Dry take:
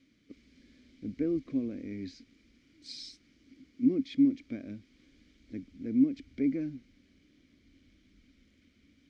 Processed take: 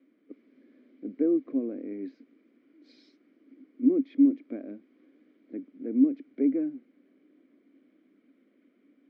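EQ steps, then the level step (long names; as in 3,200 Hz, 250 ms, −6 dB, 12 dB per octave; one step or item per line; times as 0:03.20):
high-pass filter 290 Hz 24 dB per octave
low-pass filter 1,000 Hz 12 dB per octave
+7.5 dB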